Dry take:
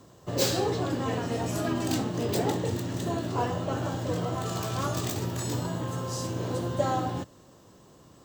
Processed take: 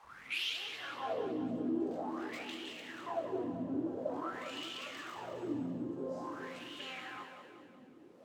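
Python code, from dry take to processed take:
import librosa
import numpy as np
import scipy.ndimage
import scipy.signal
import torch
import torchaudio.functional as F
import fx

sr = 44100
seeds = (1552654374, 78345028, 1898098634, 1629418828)

p1 = fx.tape_start_head(x, sr, length_s=0.6)
p2 = fx.high_shelf(p1, sr, hz=8200.0, db=8.5)
p3 = fx.quant_dither(p2, sr, seeds[0], bits=6, dither='triangular')
p4 = p2 + (p3 * librosa.db_to_amplitude(-5.0))
p5 = np.clip(10.0 ** (23.0 / 20.0) * p4, -1.0, 1.0) / 10.0 ** (23.0 / 20.0)
p6 = fx.filter_lfo_bandpass(p5, sr, shape='sine', hz=0.48, low_hz=250.0, high_hz=3000.0, q=6.7)
p7 = p6 + fx.echo_split(p6, sr, split_hz=630.0, low_ms=404, high_ms=188, feedback_pct=52, wet_db=-8.0, dry=0)
y = p7 * librosa.db_to_amplitude(1.0)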